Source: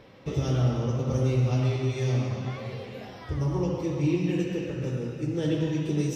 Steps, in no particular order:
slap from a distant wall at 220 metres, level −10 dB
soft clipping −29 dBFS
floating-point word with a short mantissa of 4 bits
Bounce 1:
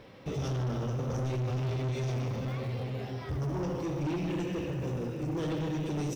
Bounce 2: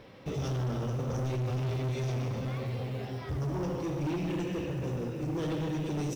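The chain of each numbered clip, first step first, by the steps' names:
floating-point word with a short mantissa, then slap from a distant wall, then soft clipping
slap from a distant wall, then soft clipping, then floating-point word with a short mantissa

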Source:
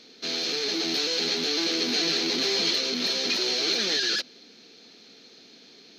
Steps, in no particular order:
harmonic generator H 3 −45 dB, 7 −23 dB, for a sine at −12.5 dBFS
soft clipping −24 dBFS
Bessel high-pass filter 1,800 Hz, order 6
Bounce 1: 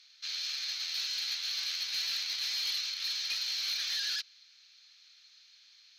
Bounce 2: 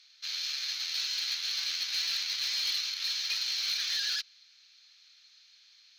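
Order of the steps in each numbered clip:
Bessel high-pass filter, then soft clipping, then harmonic generator
Bessel high-pass filter, then harmonic generator, then soft clipping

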